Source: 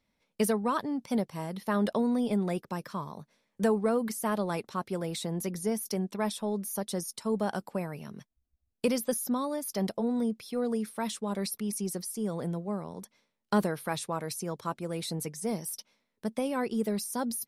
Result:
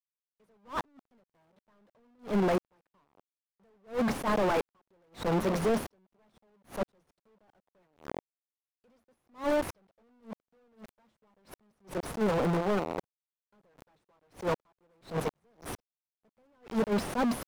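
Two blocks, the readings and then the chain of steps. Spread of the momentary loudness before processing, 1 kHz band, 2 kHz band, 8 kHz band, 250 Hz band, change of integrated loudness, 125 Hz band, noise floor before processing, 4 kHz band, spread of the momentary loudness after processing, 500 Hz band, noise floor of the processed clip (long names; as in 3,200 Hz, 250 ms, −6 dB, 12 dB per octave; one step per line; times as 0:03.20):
8 LU, −1.0 dB, +0.5 dB, −12.0 dB, −4.5 dB, 0.0 dB, −2.0 dB, −80 dBFS, −5.0 dB, 18 LU, −1.5 dB, below −85 dBFS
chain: bit-depth reduction 6 bits, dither none
mid-hump overdrive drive 37 dB, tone 1,000 Hz, clips at −13 dBFS
level that may rise only so fast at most 240 dB per second
level −4.5 dB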